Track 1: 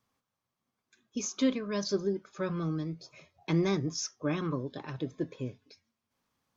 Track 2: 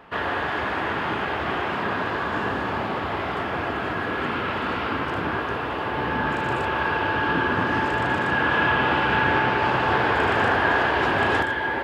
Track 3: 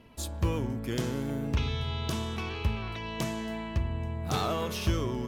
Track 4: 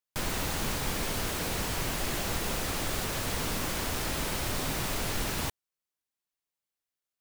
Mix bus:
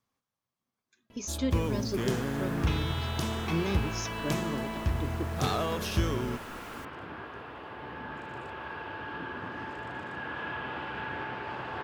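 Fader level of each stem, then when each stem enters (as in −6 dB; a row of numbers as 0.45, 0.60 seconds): −3.5, −16.0, 0.0, −18.5 decibels; 0.00, 1.85, 1.10, 1.35 seconds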